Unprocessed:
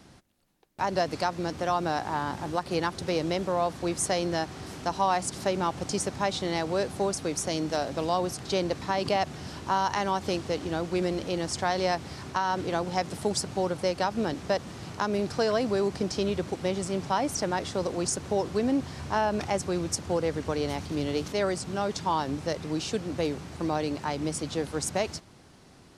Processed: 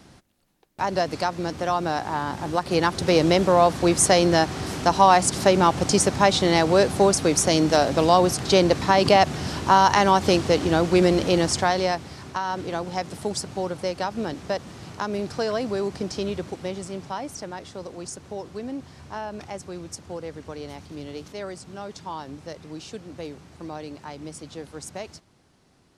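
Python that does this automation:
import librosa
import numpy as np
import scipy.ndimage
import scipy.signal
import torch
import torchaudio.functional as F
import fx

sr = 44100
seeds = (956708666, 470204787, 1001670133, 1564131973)

y = fx.gain(x, sr, db=fx.line((2.28, 3.0), (3.22, 10.0), (11.39, 10.0), (12.1, 0.0), (16.31, 0.0), (17.56, -7.0)))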